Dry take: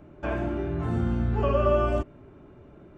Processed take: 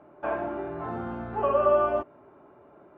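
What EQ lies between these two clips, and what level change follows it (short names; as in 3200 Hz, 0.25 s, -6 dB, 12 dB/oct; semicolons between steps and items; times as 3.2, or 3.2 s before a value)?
band-pass 880 Hz, Q 1.3; air absorption 51 m; +5.5 dB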